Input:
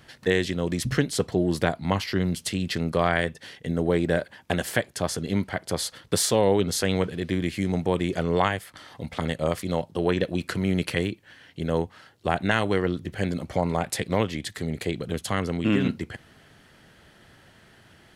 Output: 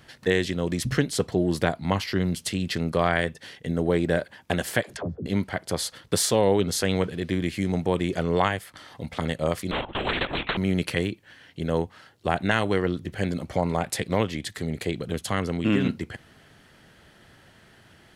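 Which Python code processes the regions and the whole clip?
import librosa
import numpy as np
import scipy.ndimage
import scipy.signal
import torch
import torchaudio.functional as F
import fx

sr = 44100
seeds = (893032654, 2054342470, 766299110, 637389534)

y = fx.chain(x, sr, fx.env_lowpass_down(base_hz=340.0, full_db=-26.0),
    fx.dispersion(late='lows', ms=58.0, hz=300.0),
    fx.band_squash(depth_pct=40), at=(4.83, 5.26))
y = fx.chain(y, sr, fx.bandpass_edges(low_hz=200.0, high_hz=2100.0),
    fx.lpc_vocoder(seeds[0], excitation='whisper', order=16),
    fx.spectral_comp(ratio=4.0), at=(9.71, 10.57))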